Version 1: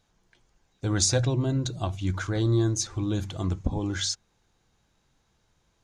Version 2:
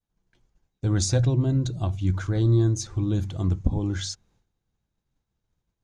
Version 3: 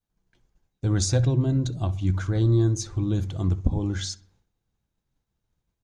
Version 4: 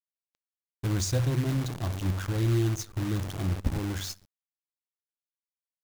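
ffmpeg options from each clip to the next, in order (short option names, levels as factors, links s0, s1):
-af "agate=range=0.0224:threshold=0.00112:ratio=3:detection=peak,lowshelf=f=360:g=10,volume=0.596"
-filter_complex "[0:a]asplit=2[s0][s1];[s1]adelay=64,lowpass=f=2600:p=1,volume=0.119,asplit=2[s2][s3];[s3]adelay=64,lowpass=f=2600:p=1,volume=0.54,asplit=2[s4][s5];[s5]adelay=64,lowpass=f=2600:p=1,volume=0.54,asplit=2[s6][s7];[s7]adelay=64,lowpass=f=2600:p=1,volume=0.54,asplit=2[s8][s9];[s9]adelay=64,lowpass=f=2600:p=1,volume=0.54[s10];[s0][s2][s4][s6][s8][s10]amix=inputs=6:normalize=0"
-af "acrusher=bits=6:dc=4:mix=0:aa=0.000001,volume=0.562"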